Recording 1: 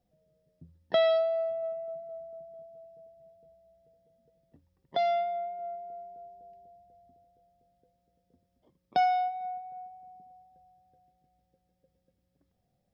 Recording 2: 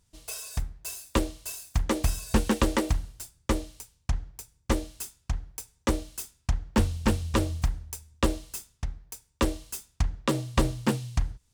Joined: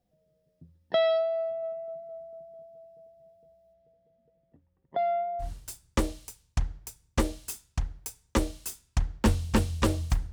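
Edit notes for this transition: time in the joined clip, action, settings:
recording 1
0:03.73–0:05.51: low-pass filter 4,200 Hz → 1,200 Hz
0:05.45: continue with recording 2 from 0:02.97, crossfade 0.12 s

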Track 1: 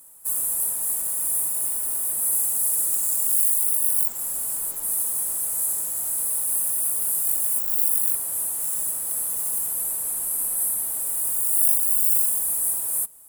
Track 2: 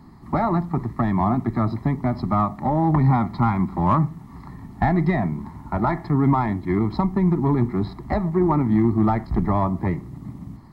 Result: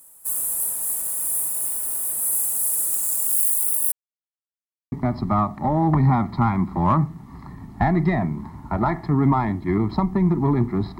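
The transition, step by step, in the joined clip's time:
track 1
0:03.92–0:04.92: silence
0:04.92: continue with track 2 from 0:01.93

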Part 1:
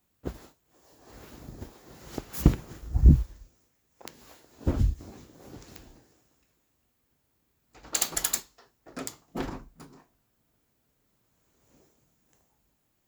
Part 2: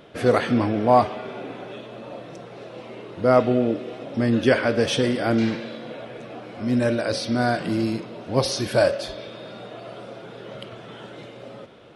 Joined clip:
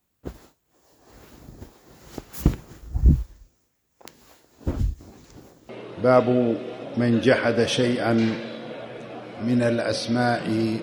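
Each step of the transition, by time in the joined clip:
part 1
0:05.24–0:05.69: reverse
0:05.69: continue with part 2 from 0:02.89

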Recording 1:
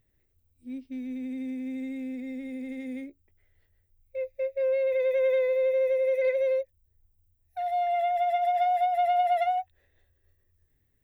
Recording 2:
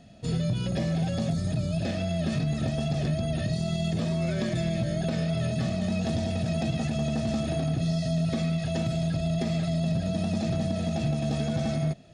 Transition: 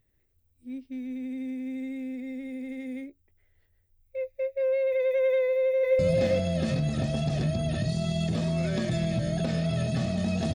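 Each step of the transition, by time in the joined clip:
recording 1
0:05.43–0:05.99: delay throw 400 ms, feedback 25%, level −0.5 dB
0:05.99: continue with recording 2 from 0:01.63

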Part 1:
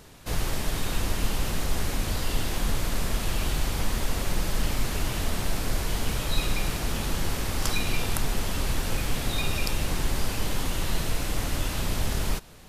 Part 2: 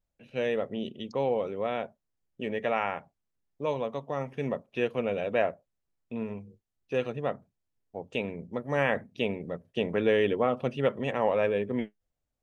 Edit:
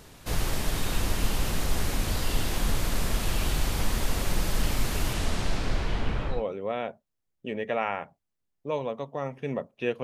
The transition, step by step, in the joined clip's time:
part 1
0:05.13–0:06.45: low-pass filter 11,000 Hz → 1,400 Hz
0:06.36: continue with part 2 from 0:01.31, crossfade 0.18 s

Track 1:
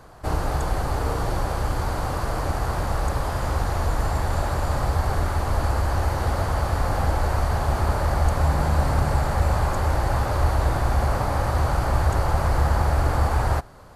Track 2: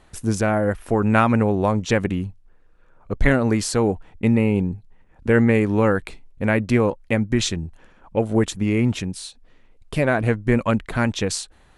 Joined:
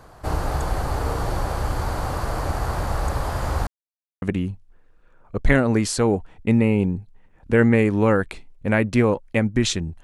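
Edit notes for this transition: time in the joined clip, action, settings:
track 1
0:03.67–0:04.22: silence
0:04.22: continue with track 2 from 0:01.98

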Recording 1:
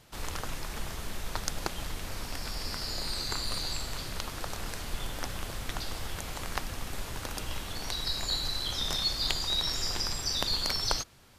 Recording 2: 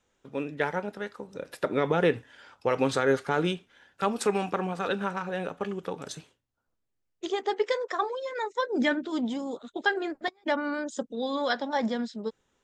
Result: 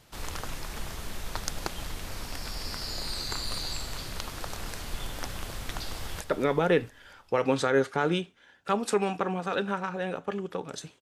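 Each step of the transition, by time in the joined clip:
recording 1
0:05.94–0:06.21: delay throw 230 ms, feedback 60%, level −11 dB
0:06.21: continue with recording 2 from 0:01.54

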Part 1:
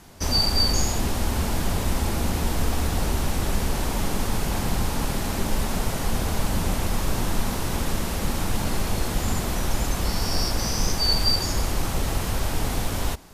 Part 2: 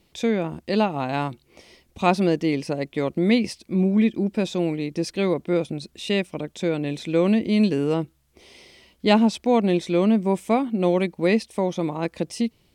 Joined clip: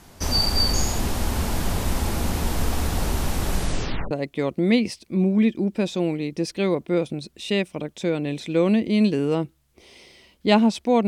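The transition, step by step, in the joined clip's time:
part 1
0:03.53: tape stop 0.58 s
0:04.11: continue with part 2 from 0:02.70

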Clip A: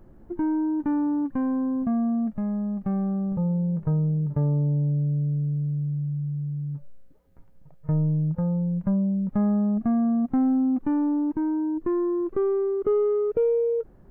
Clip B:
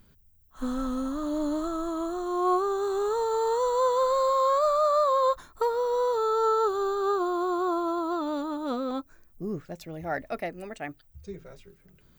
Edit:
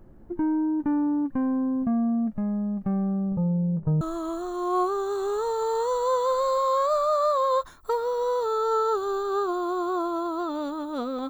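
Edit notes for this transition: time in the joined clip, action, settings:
clip A
0:03.29–0:04.01: low-pass filter 1,500 Hz → 1,100 Hz
0:04.01: continue with clip B from 0:01.73

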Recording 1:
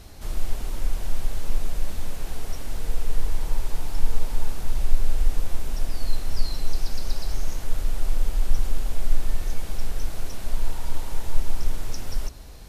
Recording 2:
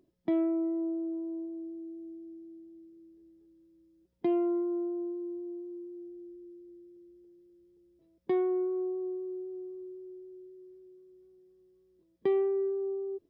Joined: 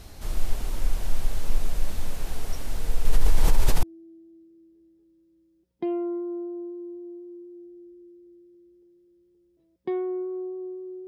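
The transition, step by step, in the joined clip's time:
recording 1
0:03.05–0:03.83: envelope flattener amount 70%
0:03.83: continue with recording 2 from 0:02.25

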